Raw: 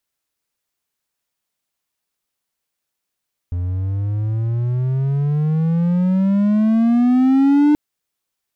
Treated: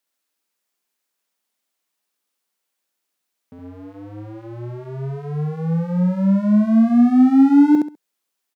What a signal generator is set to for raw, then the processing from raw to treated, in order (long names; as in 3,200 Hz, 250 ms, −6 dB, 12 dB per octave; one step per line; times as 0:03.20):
pitch glide with a swell triangle, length 4.23 s, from 86.8 Hz, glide +21.5 semitones, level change +9.5 dB, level −7.5 dB
dynamic equaliser 2,900 Hz, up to −6 dB, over −50 dBFS, Q 1.5
high-pass filter 190 Hz 24 dB per octave
repeating echo 67 ms, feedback 22%, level −3.5 dB